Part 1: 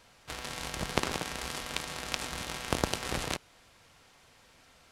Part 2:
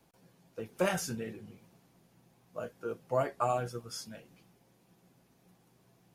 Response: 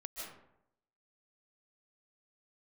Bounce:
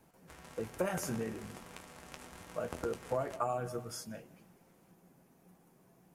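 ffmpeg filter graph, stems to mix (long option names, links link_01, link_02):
-filter_complex "[0:a]flanger=delay=9.8:depth=3.8:regen=47:speed=1.2:shape=triangular,volume=-8dB,asplit=2[link_01][link_02];[link_02]volume=-14dB[link_03];[1:a]bandreject=frequency=60:width_type=h:width=6,bandreject=frequency=120:width_type=h:width=6,volume=2dB,asplit=2[link_04][link_05];[link_05]volume=-17.5dB[link_06];[2:a]atrim=start_sample=2205[link_07];[link_06][link_07]afir=irnorm=-1:irlink=0[link_08];[link_03]aecho=0:1:592:1[link_09];[link_01][link_04][link_08][link_09]amix=inputs=4:normalize=0,equalizer=frequency=3900:width=0.96:gain=-9.5,acompressor=threshold=-31dB:ratio=4"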